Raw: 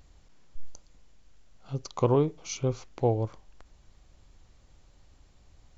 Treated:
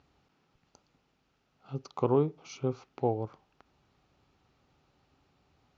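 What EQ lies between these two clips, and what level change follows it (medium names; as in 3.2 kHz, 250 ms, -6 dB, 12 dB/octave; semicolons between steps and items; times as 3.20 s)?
dynamic bell 2.7 kHz, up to -3 dB, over -48 dBFS, Q 0.99; cabinet simulation 100–5500 Hz, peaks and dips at 150 Hz +5 dB, 260 Hz +6 dB, 400 Hz +6 dB, 810 Hz +7 dB, 1.3 kHz +8 dB, 2.6 kHz +5 dB; -7.0 dB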